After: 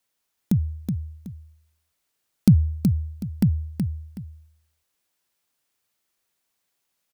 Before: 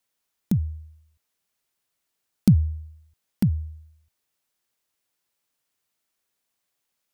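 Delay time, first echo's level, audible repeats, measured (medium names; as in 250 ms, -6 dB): 373 ms, -6.0 dB, 2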